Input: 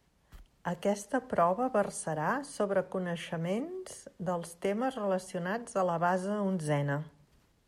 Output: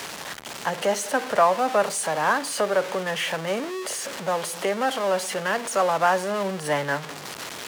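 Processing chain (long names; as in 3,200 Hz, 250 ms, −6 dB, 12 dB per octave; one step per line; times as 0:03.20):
converter with a step at zero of −34.5 dBFS
meter weighting curve A
level +8.5 dB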